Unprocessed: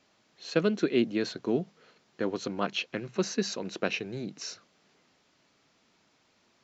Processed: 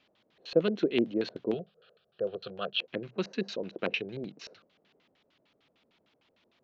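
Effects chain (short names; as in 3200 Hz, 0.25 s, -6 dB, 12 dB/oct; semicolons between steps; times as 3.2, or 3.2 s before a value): 1.54–2.8 fixed phaser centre 1400 Hz, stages 8; LFO low-pass square 6.6 Hz 540–3300 Hz; gain -4 dB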